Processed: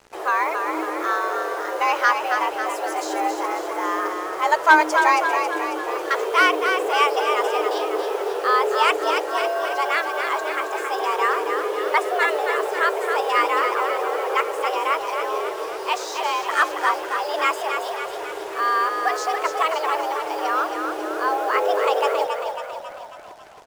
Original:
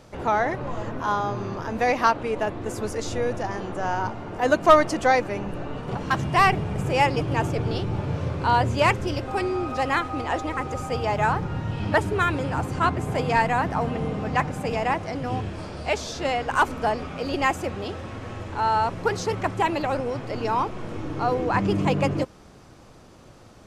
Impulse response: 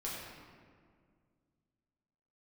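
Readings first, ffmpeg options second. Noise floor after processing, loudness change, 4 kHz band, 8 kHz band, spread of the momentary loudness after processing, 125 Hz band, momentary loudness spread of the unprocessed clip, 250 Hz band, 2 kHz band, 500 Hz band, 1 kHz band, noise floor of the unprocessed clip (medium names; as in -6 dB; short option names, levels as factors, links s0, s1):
-32 dBFS, +3.0 dB, +5.0 dB, +4.0 dB, 8 LU, under -35 dB, 10 LU, -5.5 dB, +6.0 dB, +2.5 dB, +3.5 dB, -49 dBFS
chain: -filter_complex "[0:a]afreqshift=310,acrusher=bits=6:mix=0:aa=0.5,asplit=8[s0][s1][s2][s3][s4][s5][s6][s7];[s1]adelay=273,afreqshift=35,volume=0.501[s8];[s2]adelay=546,afreqshift=70,volume=0.282[s9];[s3]adelay=819,afreqshift=105,volume=0.157[s10];[s4]adelay=1092,afreqshift=140,volume=0.0881[s11];[s5]adelay=1365,afreqshift=175,volume=0.0495[s12];[s6]adelay=1638,afreqshift=210,volume=0.0275[s13];[s7]adelay=1911,afreqshift=245,volume=0.0155[s14];[s0][s8][s9][s10][s11][s12][s13][s14]amix=inputs=8:normalize=0,volume=1.12"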